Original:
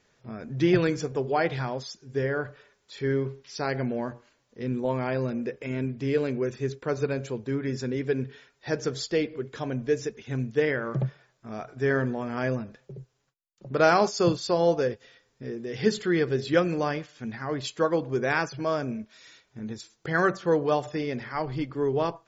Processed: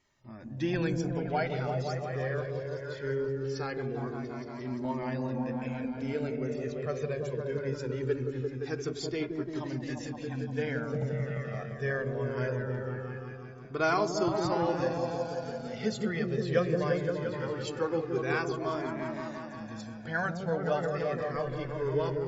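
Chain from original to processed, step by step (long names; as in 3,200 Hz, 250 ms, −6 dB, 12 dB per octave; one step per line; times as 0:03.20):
echo whose low-pass opens from repeat to repeat 173 ms, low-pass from 400 Hz, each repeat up 1 octave, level 0 dB
flanger whose copies keep moving one way falling 0.21 Hz
level −2.5 dB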